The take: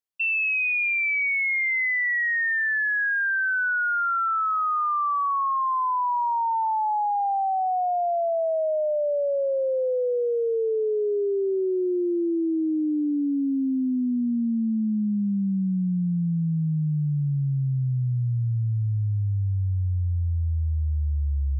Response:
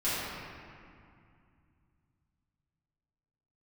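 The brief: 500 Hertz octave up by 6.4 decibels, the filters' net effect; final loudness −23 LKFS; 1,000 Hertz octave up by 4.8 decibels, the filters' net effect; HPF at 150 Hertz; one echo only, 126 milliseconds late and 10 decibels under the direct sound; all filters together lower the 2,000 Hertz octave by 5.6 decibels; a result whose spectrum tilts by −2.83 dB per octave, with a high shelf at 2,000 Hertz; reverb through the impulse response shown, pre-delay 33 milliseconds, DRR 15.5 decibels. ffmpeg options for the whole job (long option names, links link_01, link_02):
-filter_complex "[0:a]highpass=150,equalizer=frequency=500:width_type=o:gain=7,equalizer=frequency=1000:width_type=o:gain=7,highshelf=frequency=2000:gain=-8,equalizer=frequency=2000:width_type=o:gain=-5.5,aecho=1:1:126:0.316,asplit=2[link_01][link_02];[1:a]atrim=start_sample=2205,adelay=33[link_03];[link_02][link_03]afir=irnorm=-1:irlink=0,volume=-25.5dB[link_04];[link_01][link_04]amix=inputs=2:normalize=0,volume=-2dB"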